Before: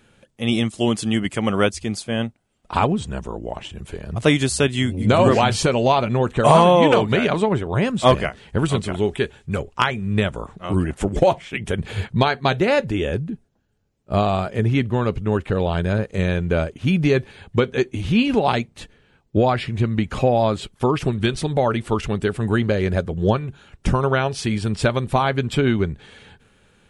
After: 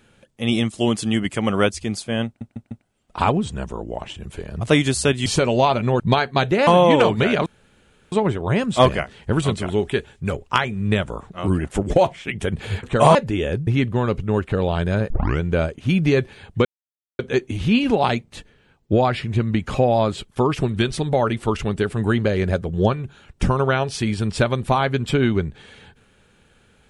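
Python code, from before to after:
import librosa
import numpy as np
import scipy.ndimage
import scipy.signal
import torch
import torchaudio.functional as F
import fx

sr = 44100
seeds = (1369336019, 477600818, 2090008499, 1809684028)

y = fx.edit(x, sr, fx.stutter(start_s=2.26, slice_s=0.15, count=4),
    fx.cut(start_s=4.81, length_s=0.72),
    fx.swap(start_s=6.27, length_s=0.32, other_s=12.09, other_length_s=0.67),
    fx.insert_room_tone(at_s=7.38, length_s=0.66),
    fx.cut(start_s=13.28, length_s=1.37),
    fx.tape_start(start_s=16.08, length_s=0.31),
    fx.insert_silence(at_s=17.63, length_s=0.54), tone=tone)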